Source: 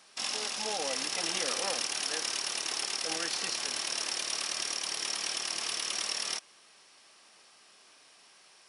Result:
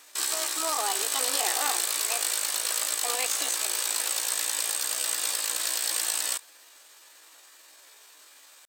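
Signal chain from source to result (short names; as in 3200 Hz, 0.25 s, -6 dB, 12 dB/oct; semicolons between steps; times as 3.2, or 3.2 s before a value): pitch shift +7 st; brick-wall FIR high-pass 250 Hz; gain +6 dB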